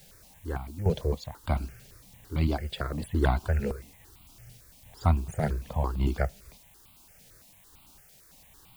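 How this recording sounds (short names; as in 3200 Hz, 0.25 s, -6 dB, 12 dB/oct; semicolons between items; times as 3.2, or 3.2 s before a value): random-step tremolo, depth 75%; a quantiser's noise floor 10-bit, dither triangular; notches that jump at a steady rate 8.9 Hz 300–1700 Hz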